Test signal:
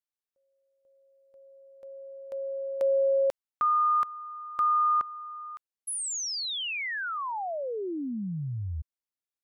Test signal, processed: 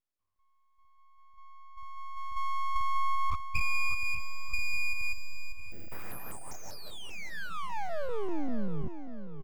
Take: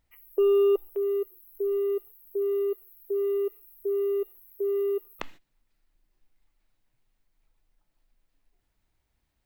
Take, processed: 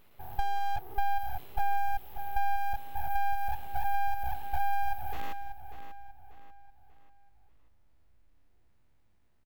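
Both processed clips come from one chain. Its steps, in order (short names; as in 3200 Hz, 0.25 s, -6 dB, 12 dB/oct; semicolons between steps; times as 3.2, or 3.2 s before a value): stepped spectrum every 0.2 s; compressor 8:1, threshold -32 dBFS; full-wave rectifier; feedback echo 0.59 s, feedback 41%, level -9.5 dB; mismatched tape noise reduction decoder only; gain +7 dB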